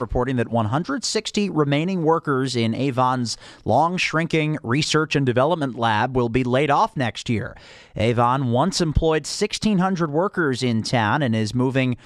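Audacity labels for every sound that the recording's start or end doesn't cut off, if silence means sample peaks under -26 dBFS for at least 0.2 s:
3.660000	7.470000	sound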